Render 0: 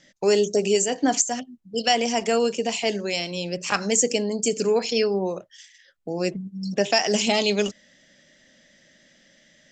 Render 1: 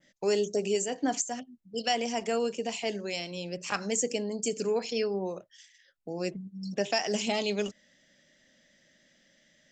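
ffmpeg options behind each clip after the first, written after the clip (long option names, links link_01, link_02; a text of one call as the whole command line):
ffmpeg -i in.wav -af "adynamicequalizer=threshold=0.0141:dfrequency=5000:dqfactor=0.74:tfrequency=5000:tqfactor=0.74:attack=5:release=100:ratio=0.375:range=2:mode=cutabove:tftype=bell,volume=-7.5dB" out.wav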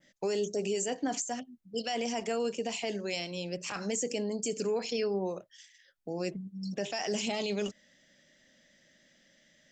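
ffmpeg -i in.wav -af "alimiter=limit=-23.5dB:level=0:latency=1:release=17" out.wav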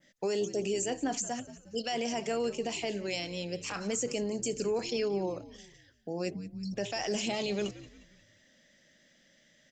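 ffmpeg -i in.wav -filter_complex "[0:a]asplit=5[link_01][link_02][link_03][link_04][link_05];[link_02]adelay=178,afreqshift=-76,volume=-16.5dB[link_06];[link_03]adelay=356,afreqshift=-152,volume=-24dB[link_07];[link_04]adelay=534,afreqshift=-228,volume=-31.6dB[link_08];[link_05]adelay=712,afreqshift=-304,volume=-39.1dB[link_09];[link_01][link_06][link_07][link_08][link_09]amix=inputs=5:normalize=0" out.wav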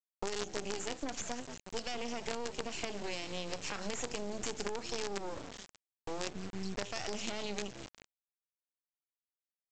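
ffmpeg -i in.wav -af "aresample=16000,acrusher=bits=5:dc=4:mix=0:aa=0.000001,aresample=44100,acompressor=threshold=-38dB:ratio=6,volume=4.5dB" out.wav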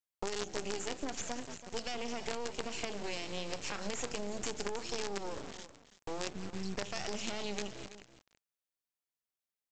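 ffmpeg -i in.wav -af "aecho=1:1:330:0.2" out.wav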